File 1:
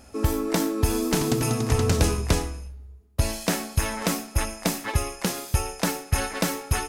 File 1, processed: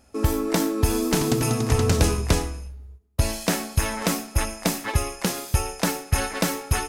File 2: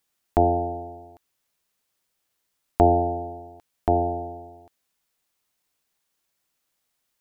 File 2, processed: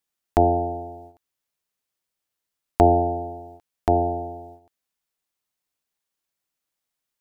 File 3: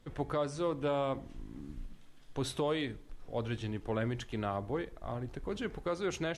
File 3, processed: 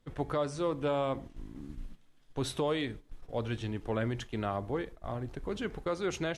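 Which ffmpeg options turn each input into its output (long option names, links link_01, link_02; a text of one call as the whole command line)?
ffmpeg -i in.wav -af "agate=range=-9dB:threshold=-45dB:ratio=16:detection=peak,volume=1.5dB" out.wav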